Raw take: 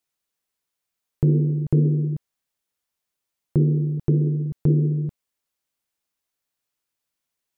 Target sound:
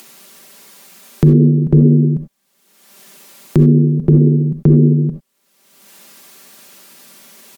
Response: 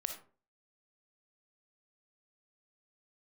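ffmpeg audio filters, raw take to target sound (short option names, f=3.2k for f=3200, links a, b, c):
-filter_complex "[0:a]equalizer=f=240:t=o:w=1.4:g=8,aecho=1:1:5.1:0.58,acrossover=split=140[a][b];[b]acompressor=mode=upward:threshold=-24dB:ratio=2.5[c];[a][c]amix=inputs=2:normalize=0[d];[1:a]atrim=start_sample=2205,atrim=end_sample=3969,asetrate=38367,aresample=44100[e];[d][e]afir=irnorm=-1:irlink=0,alimiter=level_in=7.5dB:limit=-1dB:release=50:level=0:latency=1,volume=-1dB"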